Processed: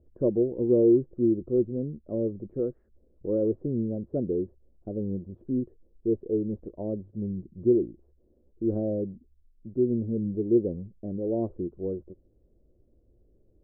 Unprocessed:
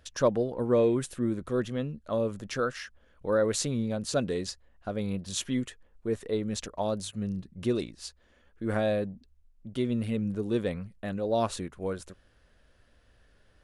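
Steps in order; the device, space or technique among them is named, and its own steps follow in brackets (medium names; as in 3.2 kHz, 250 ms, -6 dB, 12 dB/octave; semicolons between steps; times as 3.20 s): under water (low-pass 510 Hz 24 dB/octave; peaking EQ 350 Hz +10 dB 0.39 oct)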